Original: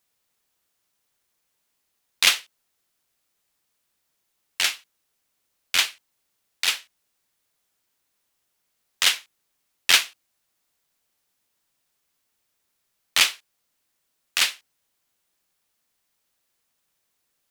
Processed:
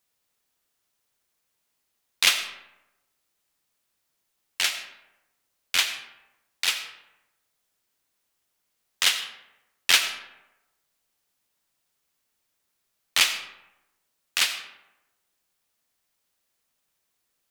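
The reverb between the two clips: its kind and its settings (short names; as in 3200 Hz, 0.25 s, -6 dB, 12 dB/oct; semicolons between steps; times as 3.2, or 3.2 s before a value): digital reverb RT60 0.97 s, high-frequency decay 0.55×, pre-delay 45 ms, DRR 9.5 dB; gain -2 dB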